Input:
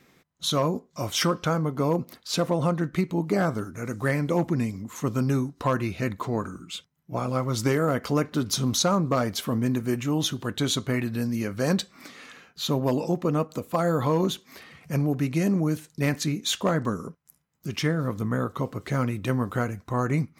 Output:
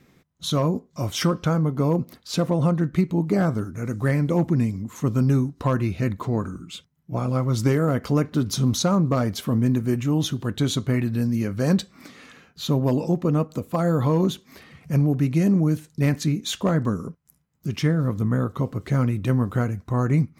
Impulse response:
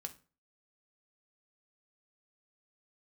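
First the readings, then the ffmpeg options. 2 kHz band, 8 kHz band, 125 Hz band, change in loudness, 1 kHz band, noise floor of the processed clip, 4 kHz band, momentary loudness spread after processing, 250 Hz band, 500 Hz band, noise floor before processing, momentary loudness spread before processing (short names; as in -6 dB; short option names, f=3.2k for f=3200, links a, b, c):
-1.5 dB, -2.0 dB, +6.0 dB, +3.5 dB, -1.0 dB, -62 dBFS, -2.0 dB, 8 LU, +4.0 dB, +1.0 dB, -64 dBFS, 8 LU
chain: -af "lowshelf=f=290:g=10,volume=-2dB"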